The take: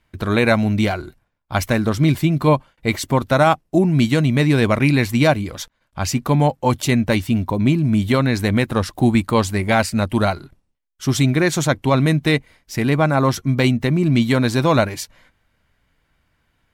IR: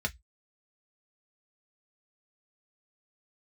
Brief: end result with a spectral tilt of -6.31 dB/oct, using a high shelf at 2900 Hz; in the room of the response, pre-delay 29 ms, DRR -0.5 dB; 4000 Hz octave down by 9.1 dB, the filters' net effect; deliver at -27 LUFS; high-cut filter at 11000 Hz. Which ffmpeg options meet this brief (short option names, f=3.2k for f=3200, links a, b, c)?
-filter_complex "[0:a]lowpass=11k,highshelf=f=2.9k:g=-5.5,equalizer=f=4k:t=o:g=-7,asplit=2[a][b];[1:a]atrim=start_sample=2205,adelay=29[c];[b][c]afir=irnorm=-1:irlink=0,volume=-5dB[d];[a][d]amix=inputs=2:normalize=0,volume=-12.5dB"